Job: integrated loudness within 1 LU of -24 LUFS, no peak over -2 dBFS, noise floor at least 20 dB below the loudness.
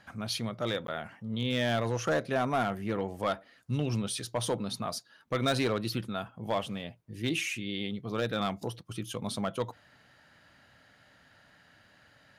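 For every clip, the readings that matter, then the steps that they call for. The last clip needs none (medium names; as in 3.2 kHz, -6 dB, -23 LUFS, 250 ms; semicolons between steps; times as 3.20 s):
clipped samples 0.5%; clipping level -21.5 dBFS; dropouts 1; longest dropout 12 ms; loudness -33.0 LUFS; peak level -21.5 dBFS; loudness target -24.0 LUFS
-> clip repair -21.5 dBFS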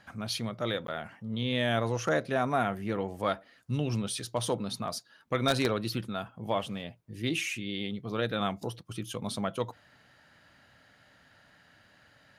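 clipped samples 0.0%; dropouts 1; longest dropout 12 ms
-> interpolate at 0.87 s, 12 ms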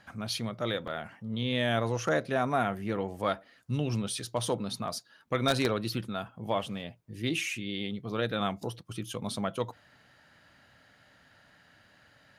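dropouts 0; loudness -32.5 LUFS; peak level -12.5 dBFS; loudness target -24.0 LUFS
-> trim +8.5 dB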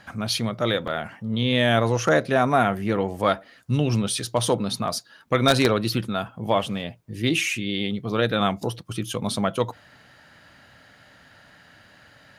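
loudness -24.0 LUFS; peak level -4.0 dBFS; noise floor -54 dBFS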